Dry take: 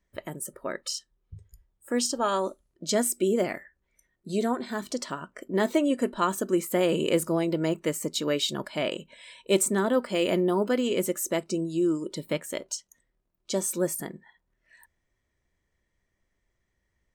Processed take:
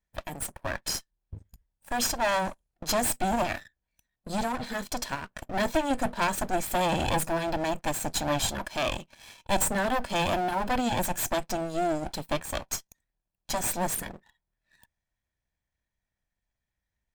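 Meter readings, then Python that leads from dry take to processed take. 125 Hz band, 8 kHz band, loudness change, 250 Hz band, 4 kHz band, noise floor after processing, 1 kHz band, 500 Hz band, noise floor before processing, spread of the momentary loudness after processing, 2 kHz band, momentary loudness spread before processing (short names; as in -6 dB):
-0.5 dB, +0.5 dB, -1.5 dB, -5.0 dB, -0.5 dB, under -85 dBFS, +5.0 dB, -4.5 dB, -78 dBFS, 9 LU, +3.5 dB, 12 LU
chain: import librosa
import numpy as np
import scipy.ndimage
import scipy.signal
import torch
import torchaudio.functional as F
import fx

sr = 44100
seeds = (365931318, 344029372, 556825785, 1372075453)

y = fx.lower_of_two(x, sr, delay_ms=1.2)
y = fx.leveller(y, sr, passes=2)
y = y * 10.0 ** (-4.0 / 20.0)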